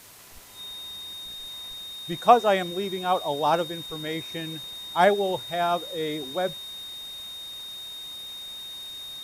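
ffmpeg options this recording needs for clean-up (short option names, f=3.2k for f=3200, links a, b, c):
-af "adeclick=t=4,bandreject=f=3.7k:w=30,afwtdn=0.004"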